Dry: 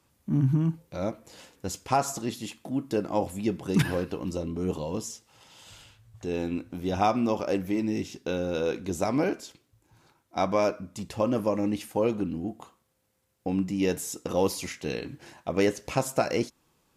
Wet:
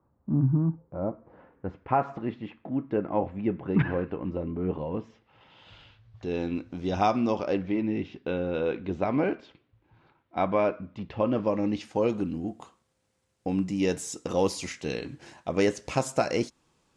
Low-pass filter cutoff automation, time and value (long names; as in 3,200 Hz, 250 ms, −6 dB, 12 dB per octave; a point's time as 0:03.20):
low-pass filter 24 dB per octave
0:01.10 1,200 Hz
0:02.06 2,300 Hz
0:04.91 2,300 Hz
0:06.69 6,100 Hz
0:07.25 6,100 Hz
0:07.84 3,200 Hz
0:11.14 3,200 Hz
0:12.26 9,100 Hz